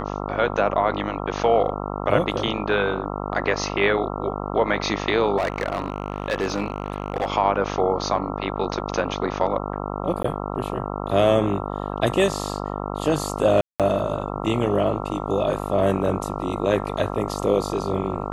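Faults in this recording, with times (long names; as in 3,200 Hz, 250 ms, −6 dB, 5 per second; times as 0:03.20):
mains buzz 50 Hz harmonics 27 −29 dBFS
0:05.37–0:07.30: clipping −18 dBFS
0:10.23–0:10.24: drop-out 14 ms
0:13.61–0:13.80: drop-out 187 ms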